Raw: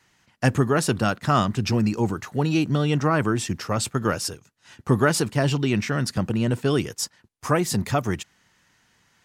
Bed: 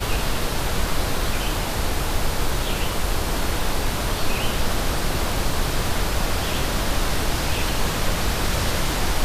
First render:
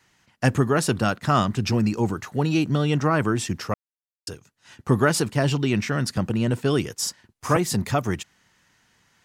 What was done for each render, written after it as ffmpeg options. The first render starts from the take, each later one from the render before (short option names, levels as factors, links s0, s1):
-filter_complex "[0:a]asettb=1/sr,asplit=3[s0][s1][s2];[s0]atrim=end=6.954[s3];[s1]atrim=start=6.95:end=7.57,asetpts=PTS-STARTPTS,afade=t=in:d=0.004:c=qsin,afade=t=out:st=0.616:d=0.004:c=qsin,asplit=2[s4][s5];[s5]adelay=49,volume=0.794[s6];[s4][s6]amix=inputs=2:normalize=0,atrim=end_sample=27342[s7];[s2]atrim=start=7.566[s8];[s3][s7]acrossfade=d=0.004:c1=hsin:c2=qsin[s9];[s9][s8]acrossfade=d=0.004:c1=qsin:c2=hsin,asplit=3[s10][s11][s12];[s10]atrim=end=3.74,asetpts=PTS-STARTPTS,afade=t=out:st=3.736:d=0.004:c=hsin[s13];[s11]atrim=start=3.74:end=4.27,asetpts=PTS-STARTPTS,volume=0[s14];[s12]atrim=start=4.27,asetpts=PTS-STARTPTS,afade=t=in:d=0.004:c=hsin[s15];[s13][s14][s15]concat=n=3:v=0:a=1"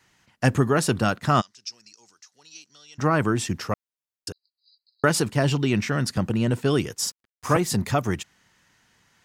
-filter_complex "[0:a]asplit=3[s0][s1][s2];[s0]afade=t=out:st=1.4:d=0.02[s3];[s1]bandpass=f=5500:t=q:w=4.8,afade=t=in:st=1.4:d=0.02,afade=t=out:st=2.98:d=0.02[s4];[s2]afade=t=in:st=2.98:d=0.02[s5];[s3][s4][s5]amix=inputs=3:normalize=0,asettb=1/sr,asplit=3[s6][s7][s8];[s6]atrim=end=4.324[s9];[s7]atrim=start=4.32:end=5.04,asetpts=PTS-STARTPTS,afade=t=in:d=0.004:c=qsin,afade=t=out:st=0.716:d=0.004:c=qsin,asuperpass=centerf=4400:order=20:qfactor=4[s10];[s8]atrim=start=5.036[s11];[s9][s10]acrossfade=d=0.004:c1=hsin:c2=qsin[s12];[s12][s11]acrossfade=d=0.004:c1=qsin:c2=hsin,asettb=1/sr,asplit=3[s13][s14][s15];[s13]atrim=end=7.054[s16];[s14]atrim=start=7.05:end=7.7,asetpts=PTS-STARTPTS,afade=t=in:d=0.004:c=qsin,afade=t=out:st=0.646:d=0.004:c=qsin,aeval=exprs='sgn(val(0))*max(abs(val(0))-0.00447,0)':c=same[s17];[s15]atrim=start=7.696[s18];[s16][s17]acrossfade=d=0.004:c1=hsin:c2=qsin[s19];[s19][s18]acrossfade=d=0.004:c1=qsin:c2=hsin"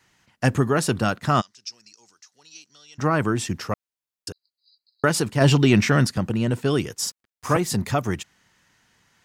-filter_complex "[0:a]asplit=3[s0][s1][s2];[s0]afade=t=out:st=5.4:d=0.02[s3];[s1]acontrast=66,afade=t=in:st=5.4:d=0.02,afade=t=out:st=6.06:d=0.02[s4];[s2]afade=t=in:st=6.06:d=0.02[s5];[s3][s4][s5]amix=inputs=3:normalize=0"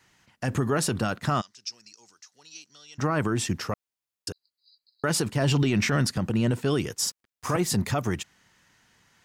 -af "alimiter=limit=0.168:level=0:latency=1:release=46"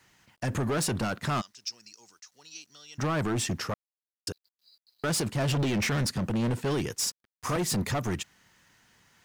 -af "acrusher=bits=11:mix=0:aa=0.000001,volume=16.8,asoftclip=hard,volume=0.0596"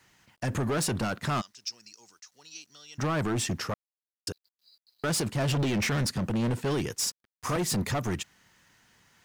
-af anull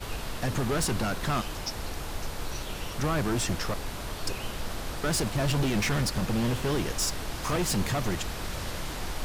-filter_complex "[1:a]volume=0.251[s0];[0:a][s0]amix=inputs=2:normalize=0"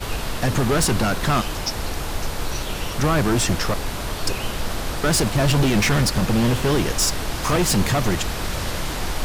-af "volume=2.66"